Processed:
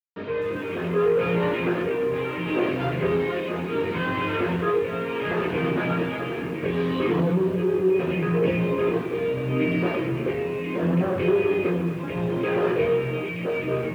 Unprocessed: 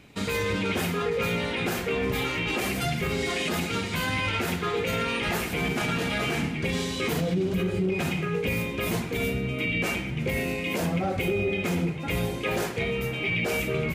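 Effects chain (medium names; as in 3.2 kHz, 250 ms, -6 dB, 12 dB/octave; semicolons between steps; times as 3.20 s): level rider gain up to 16 dB; in parallel at -2 dB: peak limiter -13 dBFS, peak gain reduction 10 dB; on the sum: tremolo 0.71 Hz, depth 65%; saturation -14.5 dBFS, distortion -9 dB; bit crusher 5-bit; cabinet simulation 190–2200 Hz, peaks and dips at 220 Hz -7 dB, 340 Hz +4 dB, 780 Hz -9 dB, 1.4 kHz -6 dB, 2.1 kHz -10 dB; chorus voices 4, 0.4 Hz, delay 23 ms, depth 1.3 ms; bit-crushed delay 250 ms, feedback 35%, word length 7-bit, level -14.5 dB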